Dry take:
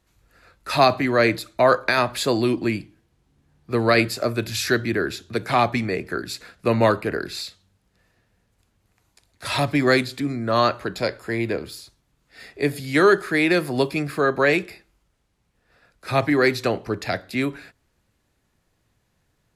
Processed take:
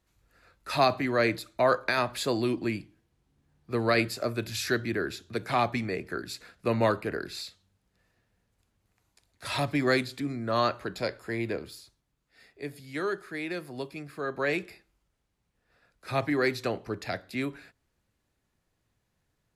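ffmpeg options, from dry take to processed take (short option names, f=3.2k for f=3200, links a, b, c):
-af "volume=0.5dB,afade=t=out:st=11.53:d=0.97:silence=0.375837,afade=t=in:st=14.13:d=0.54:silence=0.421697"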